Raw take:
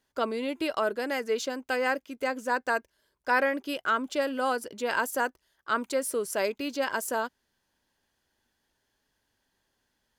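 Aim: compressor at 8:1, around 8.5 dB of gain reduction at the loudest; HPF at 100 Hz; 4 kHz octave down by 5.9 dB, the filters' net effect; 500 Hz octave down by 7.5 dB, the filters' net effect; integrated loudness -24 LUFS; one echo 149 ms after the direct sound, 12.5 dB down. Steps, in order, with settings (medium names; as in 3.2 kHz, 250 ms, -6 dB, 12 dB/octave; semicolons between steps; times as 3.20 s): high-pass 100 Hz; peaking EQ 500 Hz -8.5 dB; peaking EQ 4 kHz -8.5 dB; compression 8:1, threshold -32 dBFS; delay 149 ms -12.5 dB; trim +13.5 dB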